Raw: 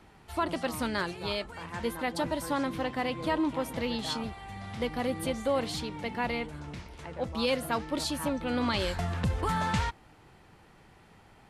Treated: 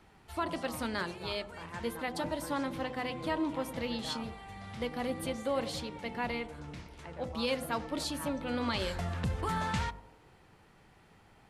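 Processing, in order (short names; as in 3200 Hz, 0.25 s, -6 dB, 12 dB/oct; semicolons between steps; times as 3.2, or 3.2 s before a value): de-hum 50.29 Hz, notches 21; on a send: narrowing echo 96 ms, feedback 64%, band-pass 470 Hz, level -15 dB; on the sum: gain -3.5 dB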